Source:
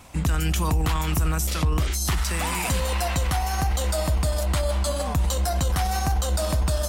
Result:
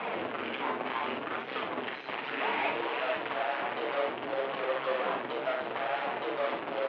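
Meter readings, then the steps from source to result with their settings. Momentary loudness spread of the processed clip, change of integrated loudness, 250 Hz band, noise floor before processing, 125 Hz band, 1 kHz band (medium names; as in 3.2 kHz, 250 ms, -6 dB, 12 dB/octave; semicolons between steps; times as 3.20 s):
4 LU, -8.5 dB, -9.5 dB, -26 dBFS, -32.0 dB, -3.5 dB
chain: in parallel at -7 dB: fuzz box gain 50 dB, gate -58 dBFS; on the sum: distance through air 200 m; saturation -23.5 dBFS, distortion -12 dB; on a send: early reflections 45 ms -6 dB, 65 ms -6.5 dB; on the sum: flange 0.66 Hz, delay 3.3 ms, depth 6.9 ms, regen -44%; mistuned SSB -57 Hz 360–3200 Hz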